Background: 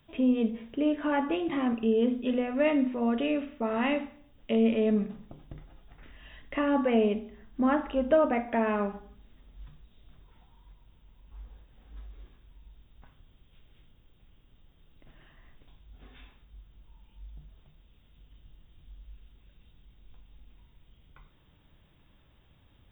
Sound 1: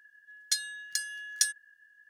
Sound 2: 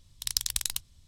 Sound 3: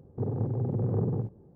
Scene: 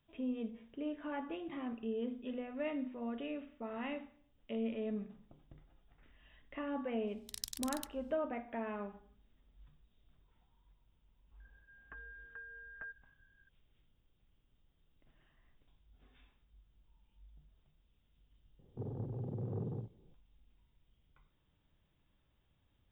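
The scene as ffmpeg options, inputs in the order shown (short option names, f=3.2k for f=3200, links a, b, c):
-filter_complex "[0:a]volume=-13.5dB[a];[1:a]lowpass=f=2.8k:t=q:w=0.5098,lowpass=f=2.8k:t=q:w=0.6013,lowpass=f=2.8k:t=q:w=0.9,lowpass=f=2.8k:t=q:w=2.563,afreqshift=-3300[b];[3:a]highpass=58[c];[2:a]atrim=end=1.07,asetpts=PTS-STARTPTS,volume=-14dB,afade=t=in:d=0.004:c=hsin,afade=t=out:st=1.066:d=0.004:c=hsin,adelay=7070[d];[b]atrim=end=2.09,asetpts=PTS-STARTPTS,volume=-10.5dB,afade=t=in:d=0.004:c=hsin,afade=t=out:st=2.086:d=0.004:c=hsin,adelay=11400[e];[c]atrim=end=1.55,asetpts=PTS-STARTPTS,volume=-11.5dB,afade=t=in:d=0.004:c=hsin,afade=t=out:st=1.546:d=0.004:c=hsin,adelay=18590[f];[a][d][e][f]amix=inputs=4:normalize=0"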